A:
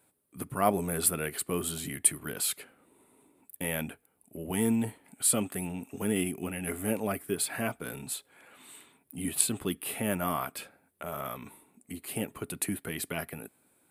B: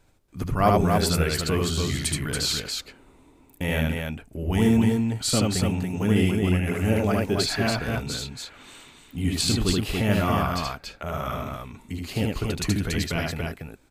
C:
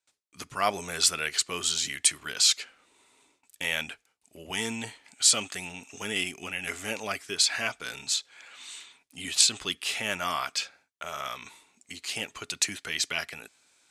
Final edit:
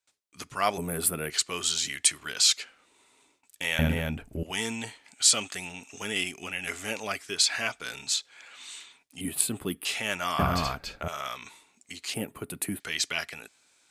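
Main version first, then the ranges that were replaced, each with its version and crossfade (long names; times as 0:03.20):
C
0:00.78–0:01.30: punch in from A
0:03.79–0:04.43: punch in from B
0:09.21–0:09.85: punch in from A
0:10.39–0:11.08: punch in from B
0:12.14–0:12.80: punch in from A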